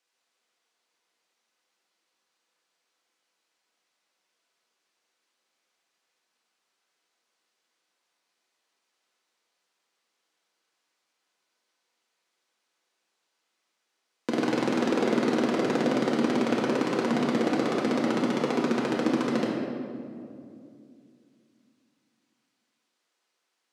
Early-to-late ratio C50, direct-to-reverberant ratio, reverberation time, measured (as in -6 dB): 0.5 dB, -5.0 dB, 2.5 s